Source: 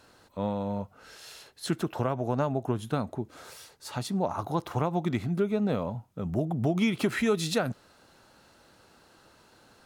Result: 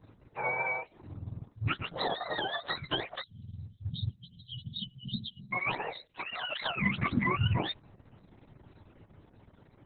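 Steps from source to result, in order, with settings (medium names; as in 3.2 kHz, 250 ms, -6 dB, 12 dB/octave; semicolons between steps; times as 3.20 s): spectrum inverted on a logarithmic axis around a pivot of 680 Hz; spectral selection erased 3.22–5.52 s, 250–2900 Hz; Opus 6 kbps 48 kHz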